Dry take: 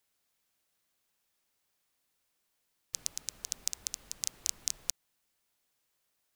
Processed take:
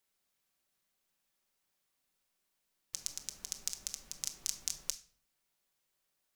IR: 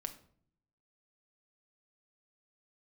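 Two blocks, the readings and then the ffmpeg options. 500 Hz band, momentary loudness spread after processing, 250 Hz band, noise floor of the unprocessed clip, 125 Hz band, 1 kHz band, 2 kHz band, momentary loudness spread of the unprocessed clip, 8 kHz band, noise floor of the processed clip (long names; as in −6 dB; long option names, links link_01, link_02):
−2.5 dB, 6 LU, −1.5 dB, −79 dBFS, −2.5 dB, −2.5 dB, −3.0 dB, 5 LU, −3.0 dB, −82 dBFS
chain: -filter_complex "[1:a]atrim=start_sample=2205,afade=type=out:start_time=0.41:duration=0.01,atrim=end_sample=18522[link_01];[0:a][link_01]afir=irnorm=-1:irlink=0,volume=-1dB"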